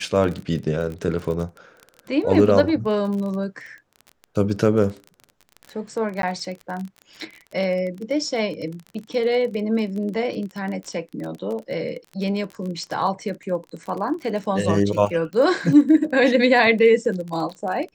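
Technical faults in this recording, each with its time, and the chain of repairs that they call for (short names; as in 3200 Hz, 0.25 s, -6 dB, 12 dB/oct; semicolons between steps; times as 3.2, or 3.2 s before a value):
crackle 27/s -29 dBFS
6.22–6.23 gap 12 ms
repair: de-click; interpolate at 6.22, 12 ms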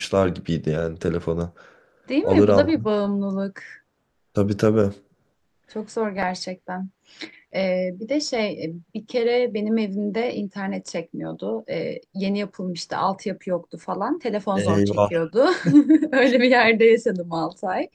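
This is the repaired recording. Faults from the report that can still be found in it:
none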